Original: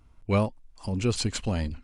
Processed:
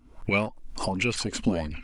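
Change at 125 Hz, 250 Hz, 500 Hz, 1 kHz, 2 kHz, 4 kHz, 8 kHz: -5.0 dB, +1.0 dB, 0.0 dB, +2.0 dB, +9.5 dB, +1.0 dB, 0.0 dB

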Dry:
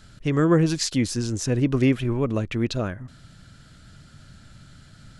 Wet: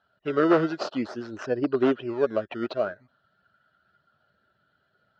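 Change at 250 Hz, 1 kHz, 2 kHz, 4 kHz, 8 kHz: -4.5 dB, +3.0 dB, -1.0 dB, -9.5 dB, under -20 dB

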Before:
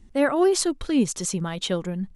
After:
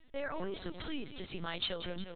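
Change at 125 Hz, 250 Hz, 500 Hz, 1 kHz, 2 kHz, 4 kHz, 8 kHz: -15.5 dB, -20.0 dB, -17.5 dB, -14.5 dB, -11.0 dB, -7.5 dB, under -40 dB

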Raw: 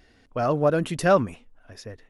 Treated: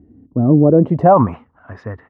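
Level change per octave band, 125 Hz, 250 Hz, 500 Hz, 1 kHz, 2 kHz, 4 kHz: +13.5 dB, +14.0 dB, +7.5 dB, +10.0 dB, -6.0 dB, under -15 dB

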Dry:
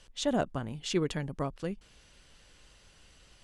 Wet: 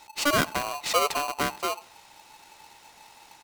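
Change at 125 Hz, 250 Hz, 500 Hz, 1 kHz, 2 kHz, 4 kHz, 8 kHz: -4.5 dB, -1.5 dB, +3.5 dB, +13.0 dB, +14.0 dB, +9.5 dB, +11.0 dB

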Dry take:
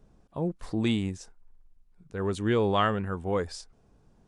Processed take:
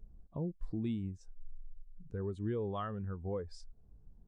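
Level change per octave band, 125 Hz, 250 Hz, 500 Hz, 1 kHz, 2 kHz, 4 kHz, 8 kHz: -7.0 dB, -9.5 dB, -11.0 dB, -15.0 dB, -20.0 dB, -20.5 dB, under -15 dB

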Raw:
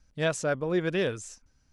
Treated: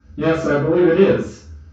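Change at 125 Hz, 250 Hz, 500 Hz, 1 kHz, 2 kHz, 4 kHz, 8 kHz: +11.0 dB, +14.5 dB, +13.0 dB, +11.0 dB, +7.0 dB, +3.0 dB, no reading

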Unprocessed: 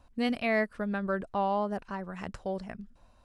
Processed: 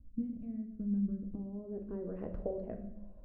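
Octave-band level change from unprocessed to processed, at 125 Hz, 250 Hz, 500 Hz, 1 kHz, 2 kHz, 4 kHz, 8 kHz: -1.5 dB, -3.0 dB, -10.0 dB, -25.5 dB, under -30 dB, under -40 dB, no reading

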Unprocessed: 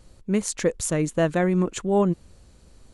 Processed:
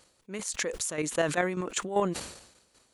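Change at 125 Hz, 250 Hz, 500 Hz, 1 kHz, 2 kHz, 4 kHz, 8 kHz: -12.5 dB, -11.0 dB, -7.0 dB, -2.5 dB, 0.0 dB, +1.0 dB, -2.0 dB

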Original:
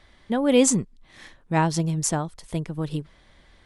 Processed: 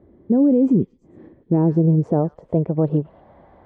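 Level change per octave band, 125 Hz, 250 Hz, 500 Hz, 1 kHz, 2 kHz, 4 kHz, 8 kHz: +7.5 dB, +7.5 dB, +3.5 dB, -4.5 dB, under -15 dB, under -30 dB, under -40 dB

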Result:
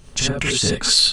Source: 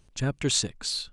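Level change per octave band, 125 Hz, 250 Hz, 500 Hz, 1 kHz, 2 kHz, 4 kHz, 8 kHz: +4.5 dB, +6.0 dB, +8.5 dB, +9.0 dB, +13.0 dB, +13.0 dB, +9.0 dB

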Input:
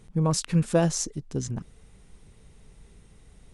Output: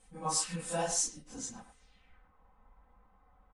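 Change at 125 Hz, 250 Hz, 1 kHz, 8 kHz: -20.0 dB, -17.0 dB, -2.5 dB, -0.5 dB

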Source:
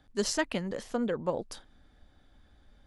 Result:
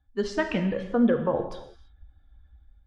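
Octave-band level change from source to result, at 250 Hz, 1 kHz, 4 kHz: +9.0 dB, +5.0 dB, -3.5 dB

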